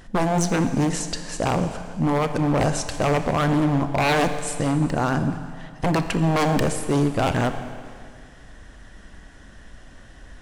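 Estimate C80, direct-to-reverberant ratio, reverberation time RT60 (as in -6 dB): 10.0 dB, 8.0 dB, 2.1 s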